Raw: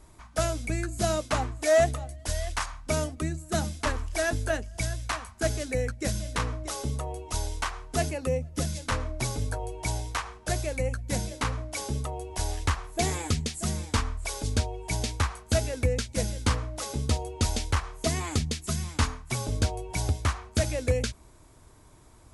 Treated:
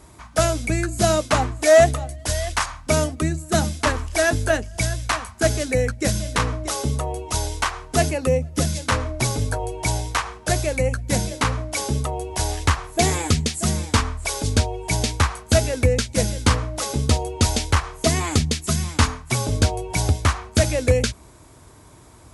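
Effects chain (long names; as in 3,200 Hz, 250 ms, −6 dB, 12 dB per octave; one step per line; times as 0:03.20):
high-pass filter 59 Hz
level +8.5 dB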